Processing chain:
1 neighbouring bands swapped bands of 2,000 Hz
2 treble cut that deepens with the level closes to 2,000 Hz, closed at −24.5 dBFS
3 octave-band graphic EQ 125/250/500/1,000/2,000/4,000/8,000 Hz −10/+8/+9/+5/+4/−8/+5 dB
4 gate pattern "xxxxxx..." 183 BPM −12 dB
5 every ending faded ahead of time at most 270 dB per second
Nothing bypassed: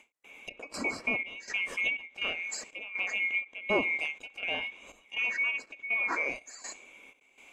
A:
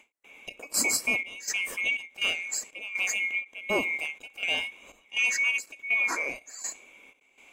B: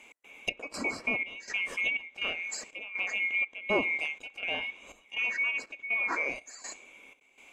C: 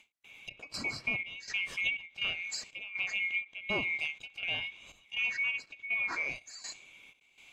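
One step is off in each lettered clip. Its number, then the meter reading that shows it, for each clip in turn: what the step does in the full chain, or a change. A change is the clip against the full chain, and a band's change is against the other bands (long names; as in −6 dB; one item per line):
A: 2, 8 kHz band +14.0 dB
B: 5, change in momentary loudness spread −5 LU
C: 3, 125 Hz band +7.0 dB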